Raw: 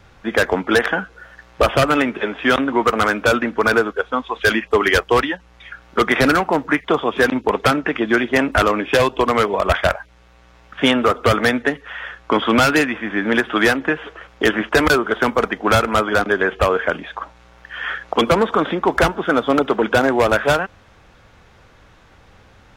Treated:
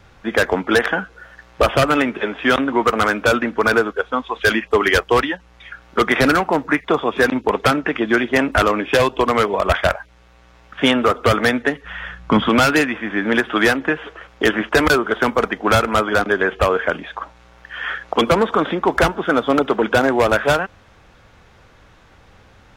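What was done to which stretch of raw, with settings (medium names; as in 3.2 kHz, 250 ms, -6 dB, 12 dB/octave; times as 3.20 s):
6.62–7.31 s: band-stop 3.1 kHz
11.84–12.49 s: resonant low shelf 260 Hz +10 dB, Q 1.5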